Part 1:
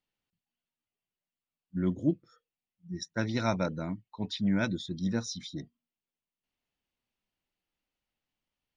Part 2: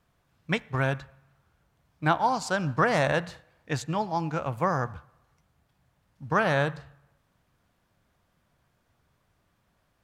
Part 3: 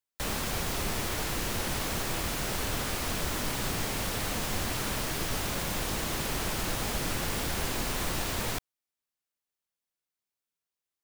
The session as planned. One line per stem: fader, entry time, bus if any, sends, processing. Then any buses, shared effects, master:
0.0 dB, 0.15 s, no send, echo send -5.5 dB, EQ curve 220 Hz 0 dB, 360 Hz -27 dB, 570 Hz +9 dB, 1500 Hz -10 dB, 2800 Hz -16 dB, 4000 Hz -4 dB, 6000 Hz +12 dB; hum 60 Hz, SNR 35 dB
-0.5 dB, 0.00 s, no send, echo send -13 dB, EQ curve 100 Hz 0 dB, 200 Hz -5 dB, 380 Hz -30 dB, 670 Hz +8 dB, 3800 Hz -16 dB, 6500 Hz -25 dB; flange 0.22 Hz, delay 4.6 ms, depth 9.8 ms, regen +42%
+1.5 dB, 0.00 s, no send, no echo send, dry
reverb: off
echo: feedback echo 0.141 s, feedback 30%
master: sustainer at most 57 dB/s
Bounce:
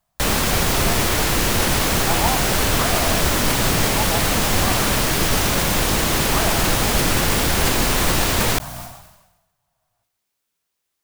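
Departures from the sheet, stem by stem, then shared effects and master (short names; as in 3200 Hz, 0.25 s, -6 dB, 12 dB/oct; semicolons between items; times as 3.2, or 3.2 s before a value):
stem 1 0.0 dB -> -7.5 dB; stem 3 +1.5 dB -> +13.0 dB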